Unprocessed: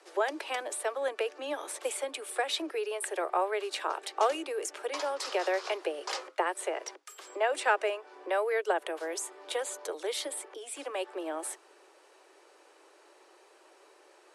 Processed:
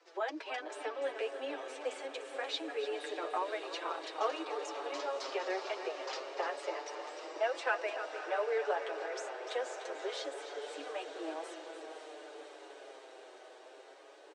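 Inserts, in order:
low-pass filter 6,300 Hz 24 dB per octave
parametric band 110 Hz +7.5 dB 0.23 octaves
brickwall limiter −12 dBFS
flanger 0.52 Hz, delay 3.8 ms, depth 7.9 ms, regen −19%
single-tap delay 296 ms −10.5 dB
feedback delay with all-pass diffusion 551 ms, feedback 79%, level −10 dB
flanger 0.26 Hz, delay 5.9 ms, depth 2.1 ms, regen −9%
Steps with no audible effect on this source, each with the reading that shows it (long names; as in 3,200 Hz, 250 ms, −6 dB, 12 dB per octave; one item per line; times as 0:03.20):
parametric band 110 Hz: nothing at its input below 270 Hz
brickwall limiter −12 dBFS: peak of its input −13.5 dBFS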